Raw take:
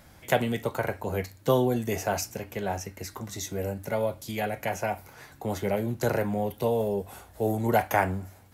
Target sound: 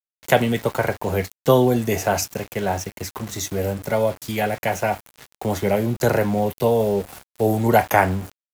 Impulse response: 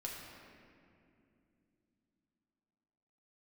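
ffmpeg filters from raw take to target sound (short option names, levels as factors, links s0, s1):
-af "aeval=exprs='val(0)*gte(abs(val(0)),0.00891)':c=same,volume=2.37"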